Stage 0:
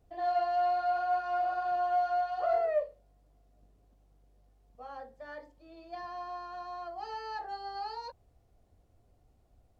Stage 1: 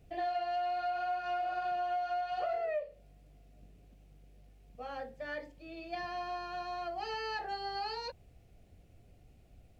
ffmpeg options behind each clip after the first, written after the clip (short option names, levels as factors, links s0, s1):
-af "equalizer=f=160:t=o:w=0.67:g=6,equalizer=f=1000:t=o:w=0.67:g=-9,equalizer=f=2500:t=o:w=0.67:g=9,acompressor=threshold=0.0126:ratio=6,volume=1.88"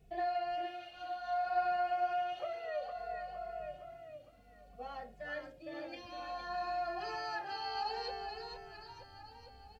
-filter_complex "[0:a]asplit=2[s0][s1];[s1]aecho=0:1:461|922|1383|1844|2305|2766|3227:0.596|0.322|0.174|0.0938|0.0506|0.0274|0.0148[s2];[s0][s2]amix=inputs=2:normalize=0,asplit=2[s3][s4];[s4]adelay=2.3,afreqshift=-0.6[s5];[s3][s5]amix=inputs=2:normalize=1"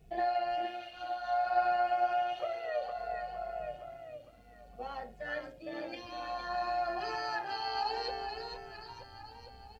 -af "tremolo=f=120:d=0.4,volume=1.88"